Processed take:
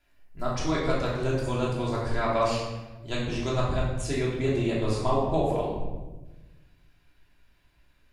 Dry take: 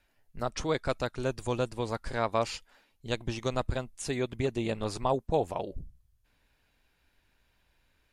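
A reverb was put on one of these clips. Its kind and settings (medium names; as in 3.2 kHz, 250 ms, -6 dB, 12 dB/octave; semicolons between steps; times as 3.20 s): simulated room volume 670 m³, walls mixed, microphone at 3 m; trim -3.5 dB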